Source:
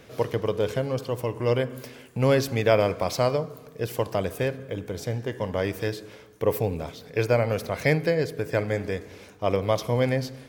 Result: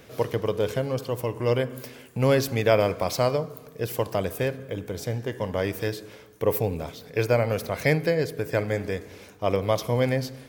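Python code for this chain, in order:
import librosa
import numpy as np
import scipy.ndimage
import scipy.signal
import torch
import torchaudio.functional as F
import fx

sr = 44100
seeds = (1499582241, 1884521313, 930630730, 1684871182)

y = fx.high_shelf(x, sr, hz=12000.0, db=8.0)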